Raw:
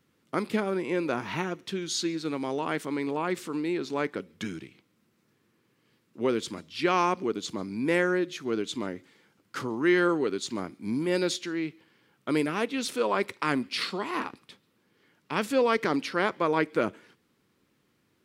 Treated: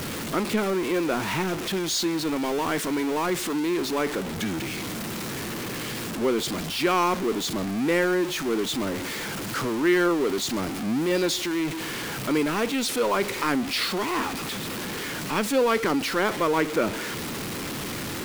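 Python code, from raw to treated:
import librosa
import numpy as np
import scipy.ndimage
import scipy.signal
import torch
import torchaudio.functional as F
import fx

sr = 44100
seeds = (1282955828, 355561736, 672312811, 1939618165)

y = x + 0.5 * 10.0 ** (-26.0 / 20.0) * np.sign(x)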